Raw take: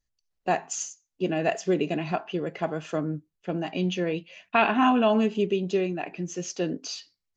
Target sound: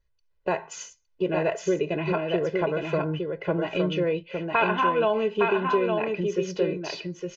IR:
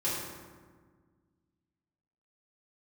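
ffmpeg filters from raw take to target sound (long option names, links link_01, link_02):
-af "lowpass=2800,aecho=1:1:2:0.86,acompressor=threshold=-31dB:ratio=2,aecho=1:1:862:0.631,volume=5dB"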